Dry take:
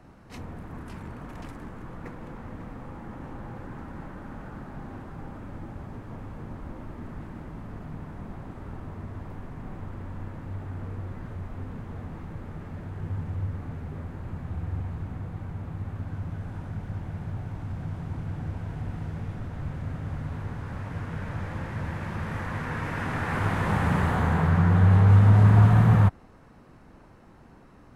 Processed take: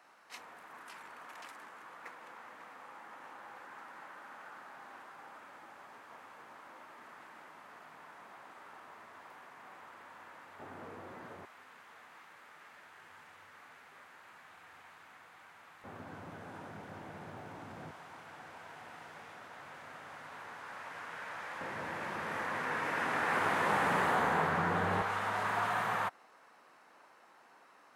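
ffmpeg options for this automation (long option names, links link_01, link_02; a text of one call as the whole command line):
ffmpeg -i in.wav -af "asetnsamples=nb_out_samples=441:pad=0,asendcmd='10.59 highpass f 440;11.45 highpass f 1400;15.84 highpass f 380;17.91 highpass f 830;21.61 highpass f 410;25.02 highpass f 820',highpass=1000" out.wav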